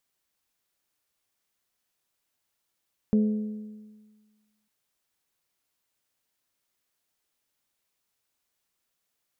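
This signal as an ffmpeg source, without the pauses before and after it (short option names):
-f lavfi -i "aevalsrc='0.141*pow(10,-3*t/1.51)*sin(2*PI*213*t)+0.0398*pow(10,-3*t/1.227)*sin(2*PI*426*t)+0.0112*pow(10,-3*t/1.161)*sin(2*PI*511.2*t)+0.00316*pow(10,-3*t/1.086)*sin(2*PI*639*t)':d=1.55:s=44100"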